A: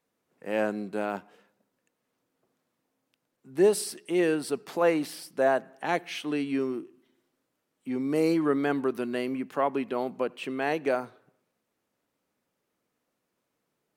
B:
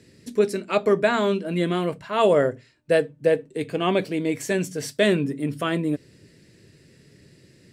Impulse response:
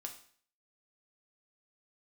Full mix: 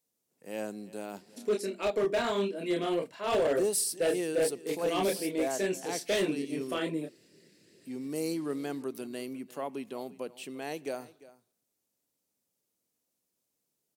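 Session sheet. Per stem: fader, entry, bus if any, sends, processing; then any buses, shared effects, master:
-8.5 dB, 0.00 s, no send, echo send -19 dB, tone controls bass +1 dB, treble +14 dB
-1.0 dB, 1.10 s, no send, no echo send, HPF 300 Hz 12 dB/oct; chorus voices 6, 1.2 Hz, delay 28 ms, depth 3 ms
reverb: off
echo: echo 0.348 s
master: hard clip -22 dBFS, distortion -12 dB; bell 1400 Hz -6 dB 1.3 oct

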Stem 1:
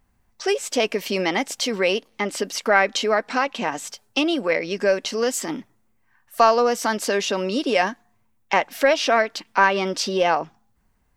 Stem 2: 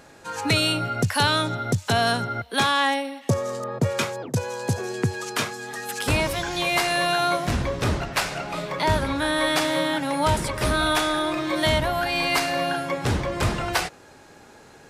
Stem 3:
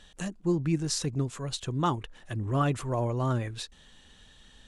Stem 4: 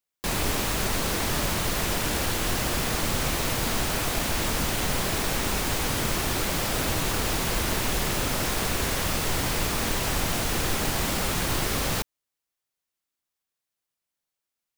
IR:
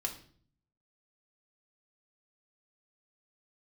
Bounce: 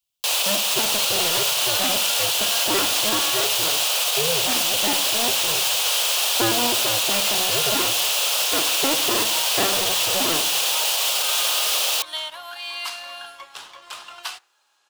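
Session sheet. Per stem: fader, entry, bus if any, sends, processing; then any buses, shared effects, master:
-19.0 dB, 0.00 s, no bus, send -3.5 dB, cycle switcher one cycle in 2, inverted; expander -50 dBFS; bell 510 Hz +8 dB 1.1 oct
-17.5 dB, 0.50 s, bus A, send -10.5 dB, resonant high-pass 1100 Hz, resonance Q 1.8
off
+1.0 dB, 0.00 s, bus A, no send, steep high-pass 520 Hz 36 dB/oct
bus A: 0.0 dB, resonant high shelf 2400 Hz +6 dB, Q 3; limiter -15 dBFS, peak gain reduction 6 dB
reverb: on, RT60 0.50 s, pre-delay 3 ms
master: bell 130 Hz +5 dB 1 oct; sample leveller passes 1

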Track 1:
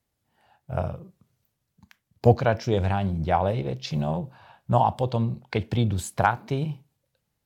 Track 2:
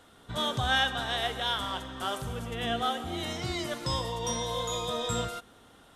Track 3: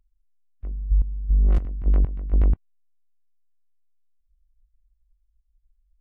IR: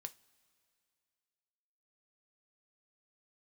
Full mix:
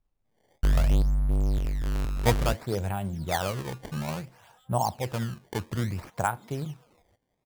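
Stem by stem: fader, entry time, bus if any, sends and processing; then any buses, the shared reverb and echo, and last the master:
-6.0 dB, 0.00 s, no send, dry
-15.0 dB, 1.75 s, no send, HPF 570 Hz 12 dB/oct; compressor 6:1, threshold -40 dBFS, peak gain reduction 16.5 dB; harmonic tremolo 6.1 Hz, depth 100%, crossover 1700 Hz
+0.5 dB, 0.00 s, no send, sample leveller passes 5; auto duck -14 dB, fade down 1.90 s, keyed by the first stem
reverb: off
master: LPF 6800 Hz 12 dB/oct; decimation with a swept rate 19×, swing 160% 0.59 Hz

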